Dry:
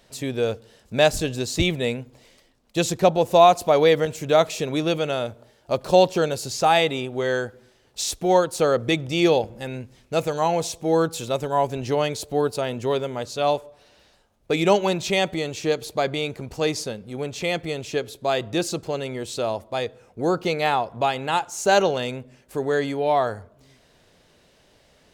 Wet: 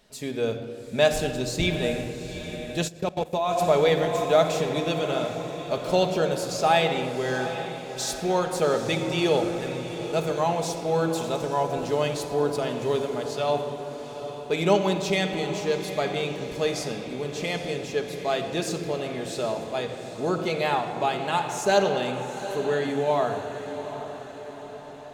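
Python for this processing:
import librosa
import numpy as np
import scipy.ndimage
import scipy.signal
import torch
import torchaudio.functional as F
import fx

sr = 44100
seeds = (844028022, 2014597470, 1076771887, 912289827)

p1 = x + fx.echo_diffused(x, sr, ms=796, feedback_pct=56, wet_db=-11.0, dry=0)
p2 = fx.room_shoebox(p1, sr, seeds[0], volume_m3=3900.0, walls='mixed', distance_m=1.4)
p3 = fx.level_steps(p2, sr, step_db=20, at=(2.87, 3.58), fade=0.02)
y = p3 * 10.0 ** (-4.5 / 20.0)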